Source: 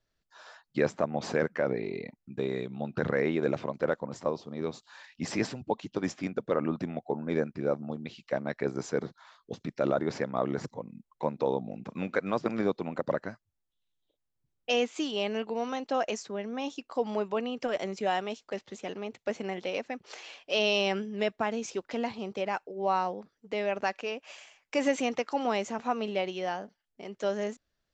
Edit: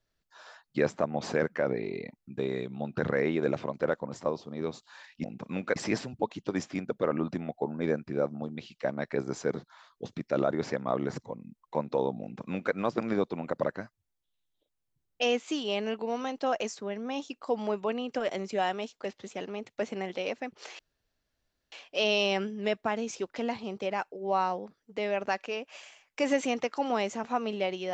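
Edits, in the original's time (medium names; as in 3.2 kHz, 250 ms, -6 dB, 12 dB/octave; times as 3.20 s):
11.70–12.22 s: copy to 5.24 s
20.27 s: insert room tone 0.93 s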